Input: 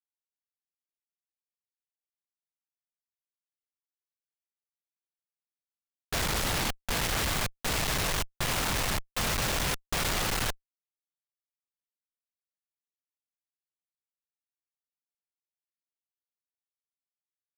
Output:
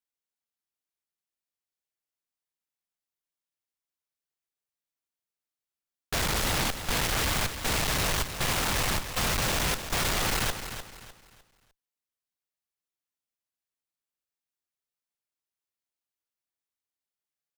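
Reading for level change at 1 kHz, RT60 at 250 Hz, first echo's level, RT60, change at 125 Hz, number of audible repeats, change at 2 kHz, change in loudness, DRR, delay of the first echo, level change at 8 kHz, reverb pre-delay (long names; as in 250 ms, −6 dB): +2.0 dB, no reverb audible, −10.0 dB, no reverb audible, +2.0 dB, 3, +2.0 dB, +2.0 dB, no reverb audible, 302 ms, +2.0 dB, no reverb audible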